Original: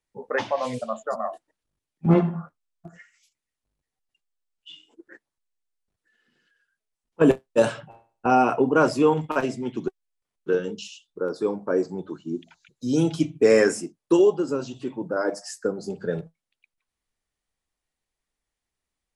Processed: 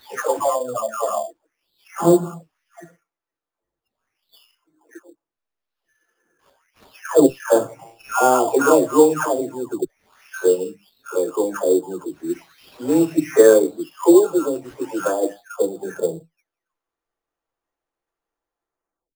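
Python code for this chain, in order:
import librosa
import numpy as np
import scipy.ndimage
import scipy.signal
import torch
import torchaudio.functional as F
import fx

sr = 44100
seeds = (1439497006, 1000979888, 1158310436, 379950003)

y = fx.spec_delay(x, sr, highs='early', ms=817)
y = fx.band_shelf(y, sr, hz=680.0, db=13.0, octaves=2.8)
y = fx.sample_hold(y, sr, seeds[0], rate_hz=8000.0, jitter_pct=0)
y = y * librosa.db_to_amplitude(-5.0)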